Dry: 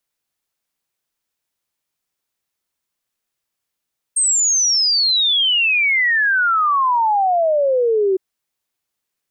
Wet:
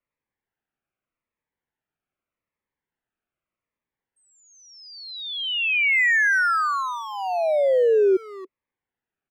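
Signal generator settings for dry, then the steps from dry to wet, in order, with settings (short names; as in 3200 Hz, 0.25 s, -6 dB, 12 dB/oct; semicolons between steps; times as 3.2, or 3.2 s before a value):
log sweep 8600 Hz -> 370 Hz 4.01 s -13 dBFS
LPF 2300 Hz 24 dB/oct; speakerphone echo 0.28 s, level -10 dB; cascading phaser falling 0.83 Hz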